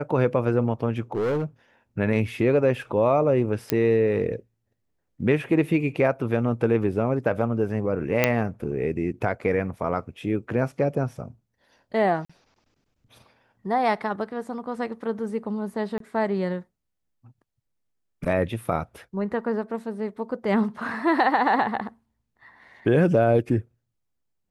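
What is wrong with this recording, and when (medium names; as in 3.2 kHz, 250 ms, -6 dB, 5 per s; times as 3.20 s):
1.12–1.44 s: clipped -21.5 dBFS
3.70 s: pop -7 dBFS
8.24 s: pop -4 dBFS
12.25–12.29 s: dropout 45 ms
15.98–16.00 s: dropout 23 ms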